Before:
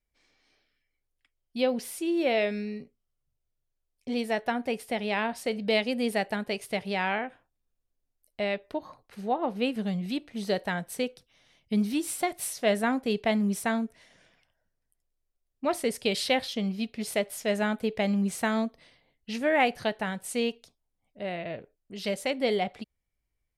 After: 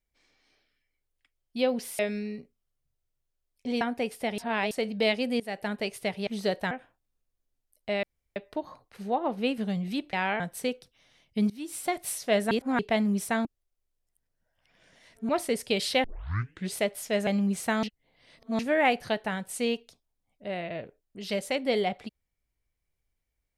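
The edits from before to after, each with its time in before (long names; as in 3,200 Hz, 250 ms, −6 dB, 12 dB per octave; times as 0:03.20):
0:01.99–0:02.41: remove
0:04.23–0:04.49: remove
0:05.06–0:05.39: reverse
0:06.08–0:06.40: fade in, from −17.5 dB
0:06.95–0:07.22: swap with 0:10.31–0:10.75
0:08.54: splice in room tone 0.33 s
0:11.85–0:12.29: fade in, from −21 dB
0:12.86–0:13.14: reverse
0:13.80–0:15.64: reverse
0:16.39: tape start 0.71 s
0:17.62–0:18.02: remove
0:18.58–0:19.34: reverse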